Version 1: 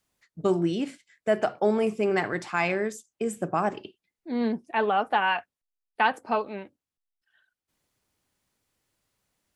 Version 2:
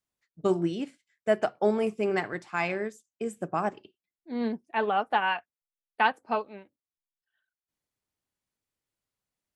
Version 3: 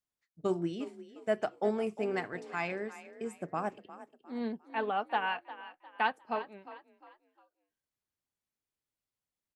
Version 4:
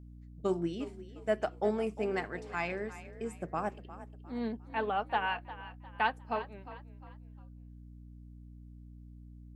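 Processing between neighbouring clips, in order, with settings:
upward expansion 1.5:1, over -44 dBFS
frequency-shifting echo 354 ms, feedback 37%, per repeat +35 Hz, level -15 dB; trim -6 dB
hum 60 Hz, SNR 13 dB

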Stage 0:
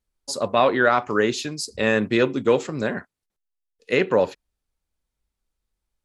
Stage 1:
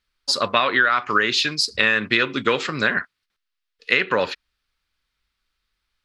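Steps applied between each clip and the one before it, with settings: high-order bell 2.4 kHz +14 dB 2.5 oct; compression 10:1, threshold -14 dBFS, peak gain reduction 11.5 dB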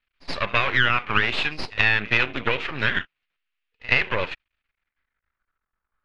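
reverse echo 75 ms -21.5 dB; half-wave rectifier; low-pass sweep 2.6 kHz -> 1.3 kHz, 4.48–5.72 s; trim -1 dB

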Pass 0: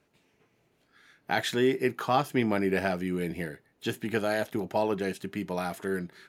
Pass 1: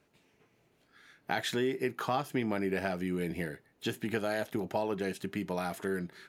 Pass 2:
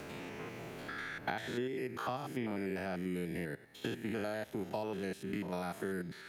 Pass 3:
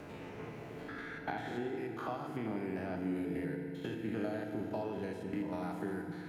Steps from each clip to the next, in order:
compression 2.5:1, threshold -30 dBFS, peak gain reduction 7.5 dB
spectrogram pixelated in time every 100 ms; three bands compressed up and down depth 100%; trim -4 dB
treble shelf 2.4 kHz -9.5 dB; on a send at -3 dB: reverberation RT60 2.7 s, pre-delay 3 ms; on the sum: trim -1.5 dB

